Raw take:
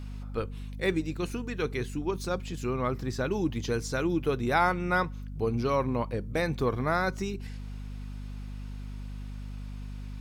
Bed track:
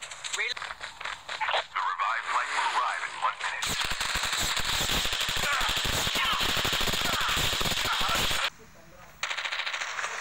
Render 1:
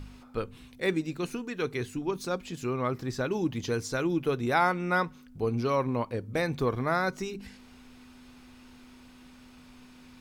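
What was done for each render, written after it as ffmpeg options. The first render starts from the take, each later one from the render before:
-af "bandreject=f=50:t=h:w=4,bandreject=f=100:t=h:w=4,bandreject=f=150:t=h:w=4,bandreject=f=200:t=h:w=4"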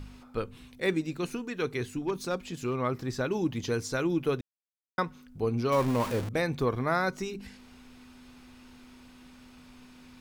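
-filter_complex "[0:a]asettb=1/sr,asplit=3[a][b][c];[a]atrim=end=1.934[d];[b]atrim=start=1.93:end=2.76,asetpts=PTS-STARTPTS,afade=t=in:d=0.004:c=qsin,afade=t=out:st=0.826:d=0.004:c=qsin,asoftclip=type=hard:threshold=-22dB[e];[c]atrim=start=2.756[f];[d][e]acrossfade=d=0.004:c1=hsin:c2=qsin[g];[g][f]acrossfade=d=0.004:c1=qsin:c2=hsin,asettb=1/sr,asplit=3[h][i][j];[h]atrim=end=5.724[k];[i]atrim=start=5.72:end=6.29,asetpts=PTS-STARTPTS,afade=t=in:d=0.004:c=qsin,afade=t=out:st=0.566:d=0.004:c=qsin,aeval=exprs='val(0)+0.5*0.0299*sgn(val(0))':c=same[l];[j]atrim=start=6.286[m];[k][l]acrossfade=d=0.004:c1=hsin:c2=qsin[n];[n][m]acrossfade=d=0.004:c1=qsin:c2=hsin,asplit=3[o][p][q];[o]atrim=end=4.41,asetpts=PTS-STARTPTS,afade=t=out:st=4.406:d=0.004:c=hsin[r];[p]atrim=start=4.41:end=4.98,asetpts=PTS-STARTPTS,volume=0[s];[q]atrim=start=4.98,asetpts=PTS-STARTPTS,afade=t=in:d=0.004:c=hsin[t];[r][s][t]concat=n=3:v=0:a=1"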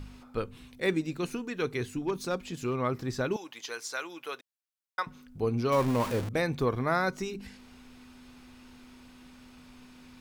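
-filter_complex "[0:a]asettb=1/sr,asplit=3[a][b][c];[a]atrim=end=3.364[d];[b]atrim=start=3.36:end=5.07,asetpts=PTS-STARTPTS,afade=t=in:d=0.004:c=qsin,afade=t=out:st=1.706:d=0.004:c=qsin,highpass=890[e];[c]atrim=start=5.066[f];[d][e]acrossfade=d=0.004:c1=hsin:c2=qsin[g];[g][f]acrossfade=d=0.004:c1=qsin:c2=hsin"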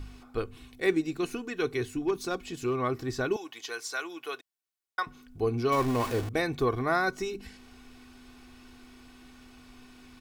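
-af "aecho=1:1:2.7:0.51"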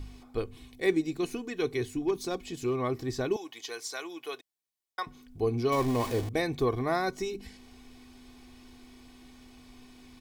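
-af "equalizer=f=1.4k:w=3:g=-9,bandreject=f=2.7k:w=14"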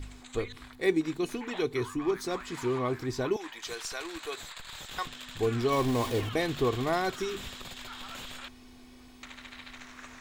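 -filter_complex "[1:a]volume=-16dB[a];[0:a][a]amix=inputs=2:normalize=0"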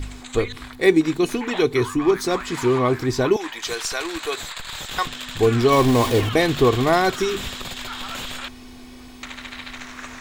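-af "volume=11dB,alimiter=limit=-3dB:level=0:latency=1"

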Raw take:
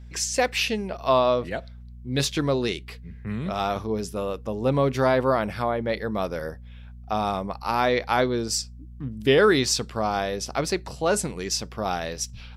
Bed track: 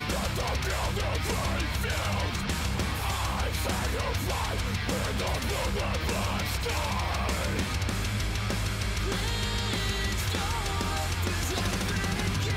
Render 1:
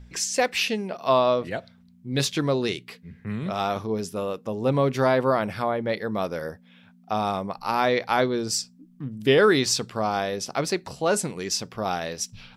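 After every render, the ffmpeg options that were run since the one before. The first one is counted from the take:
-af "bandreject=f=60:t=h:w=4,bandreject=f=120:t=h:w=4"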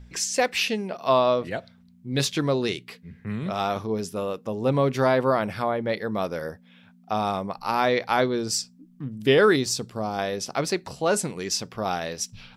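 -filter_complex "[0:a]asettb=1/sr,asplit=3[a][b][c];[a]atrim=end=9.564[d];[b]atrim=start=9.56:end=10.19,asetpts=PTS-STARTPTS,afade=t=in:d=0.004:c=qsin,afade=t=out:st=0.626:d=0.004:c=qsin,equalizer=f=1.9k:w=0.46:g=-9[e];[c]atrim=start=10.186[f];[d][e]acrossfade=d=0.004:c1=hsin:c2=qsin[g];[g][f]acrossfade=d=0.004:c1=qsin:c2=hsin"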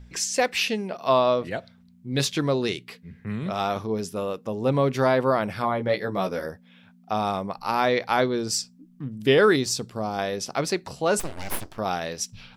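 -filter_complex "[0:a]asettb=1/sr,asplit=3[a][b][c];[a]atrim=end=5.624[d];[b]atrim=start=5.62:end=6.46,asetpts=PTS-STARTPTS,afade=t=in:d=0.004:c=qsin,afade=t=out:st=0.836:d=0.004:c=qsin,asplit=2[e][f];[f]adelay=16,volume=-3.5dB[g];[e][g]amix=inputs=2:normalize=0,atrim=end_sample=37044[h];[c]atrim=start=6.456[i];[d][h]acrossfade=d=0.004:c1=hsin:c2=qsin[j];[j][i]acrossfade=d=0.004:c1=qsin:c2=hsin,asplit=3[k][l][m];[k]afade=t=out:st=11.19:d=0.02[n];[l]aeval=exprs='abs(val(0))':c=same,afade=t=in:st=11.19:d=0.02,afade=t=out:st=11.77:d=0.02[o];[m]afade=t=in:st=11.77:d=0.02[p];[n][o][p]amix=inputs=3:normalize=0"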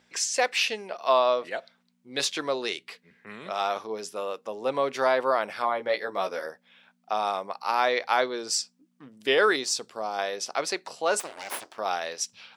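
-af "highpass=530,equalizer=f=13k:t=o:w=0.29:g=-12.5"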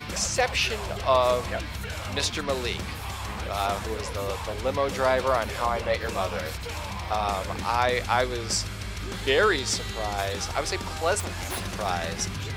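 -filter_complex "[1:a]volume=-4.5dB[a];[0:a][a]amix=inputs=2:normalize=0"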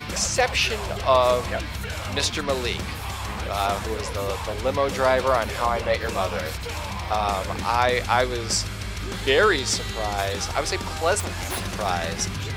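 -af "volume=3dB"

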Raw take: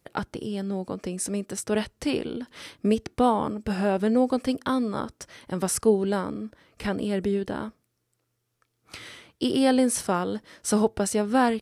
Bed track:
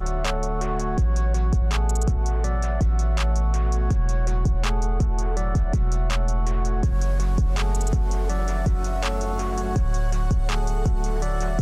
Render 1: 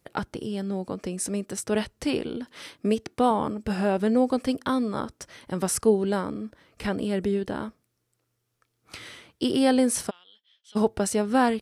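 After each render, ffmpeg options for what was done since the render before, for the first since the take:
-filter_complex "[0:a]asettb=1/sr,asplit=3[a][b][c];[a]atrim=end=2.484[d];[b]atrim=start=2.48:end=3.31,asetpts=PTS-STARTPTS,afade=t=in:d=0.004:c=qsin,afade=t=out:st=0.826:d=0.004:c=qsin,highpass=f=170:p=1[e];[c]atrim=start=3.306[f];[d][e]acrossfade=d=0.004:c1=hsin:c2=qsin[g];[g][f]acrossfade=d=0.004:c1=qsin:c2=hsin,asplit=3[h][i][j];[h]afade=t=out:st=10.09:d=0.02[k];[i]bandpass=f=3.3k:t=q:w=12,afade=t=in:st=10.09:d=0.02,afade=t=out:st=10.75:d=0.02[l];[j]afade=t=in:st=10.75:d=0.02[m];[k][l][m]amix=inputs=3:normalize=0"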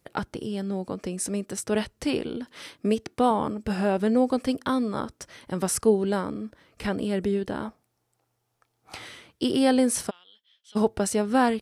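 -filter_complex "[0:a]asettb=1/sr,asplit=3[a][b][c];[a]atrim=end=7.654[d];[b]atrim=start=7.65:end=9.06,asetpts=PTS-STARTPTS,afade=t=in:d=0.004:c=qsin,afade=t=out:st=1.406:d=0.004:c=qsin,equalizer=f=800:t=o:w=0.61:g=13.5[e];[c]atrim=start=9.056[f];[d][e]acrossfade=d=0.004:c1=hsin:c2=qsin[g];[g][f]acrossfade=d=0.004:c1=qsin:c2=hsin"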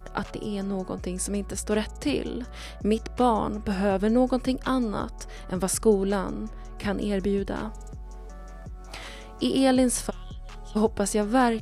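-filter_complex "[1:a]volume=-19dB[a];[0:a][a]amix=inputs=2:normalize=0"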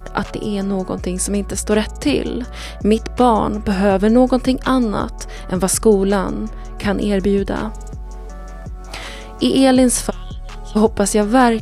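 -af "volume=9.5dB,alimiter=limit=-2dB:level=0:latency=1"

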